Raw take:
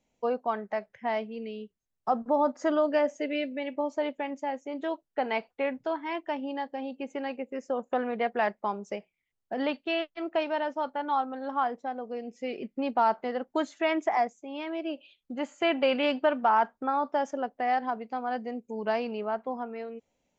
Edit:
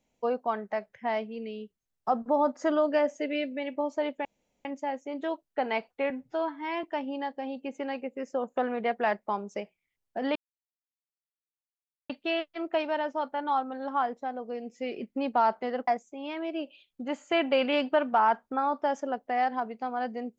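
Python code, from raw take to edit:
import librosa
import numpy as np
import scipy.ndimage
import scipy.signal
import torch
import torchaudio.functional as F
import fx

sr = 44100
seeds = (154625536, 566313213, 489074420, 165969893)

y = fx.edit(x, sr, fx.insert_room_tone(at_s=4.25, length_s=0.4),
    fx.stretch_span(start_s=5.7, length_s=0.49, factor=1.5),
    fx.insert_silence(at_s=9.71, length_s=1.74),
    fx.cut(start_s=13.49, length_s=0.69), tone=tone)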